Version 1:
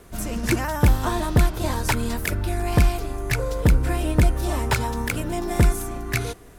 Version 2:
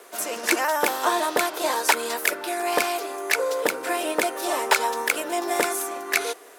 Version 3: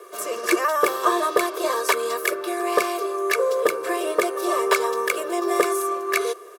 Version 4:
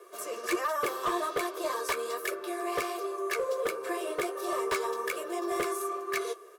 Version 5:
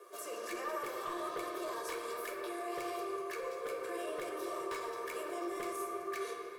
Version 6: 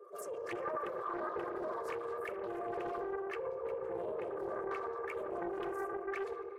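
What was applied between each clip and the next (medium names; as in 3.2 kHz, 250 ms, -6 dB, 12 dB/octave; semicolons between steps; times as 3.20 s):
high-pass 410 Hz 24 dB/octave; trim +5 dB
comb 1.8 ms, depth 77%; small resonant body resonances 370/1200 Hz, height 15 dB, ringing for 35 ms; trim -5 dB
hard clipper -15 dBFS, distortion -13 dB; flange 1.3 Hz, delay 7.2 ms, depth 7.3 ms, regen -38%; trim -5 dB
peak limiter -31 dBFS, peak gain reduction 10.5 dB; reverberation RT60 3.1 s, pre-delay 7 ms, DRR 0.5 dB; trim -4 dB
resonances exaggerated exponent 2; loudspeaker Doppler distortion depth 0.35 ms; trim +1 dB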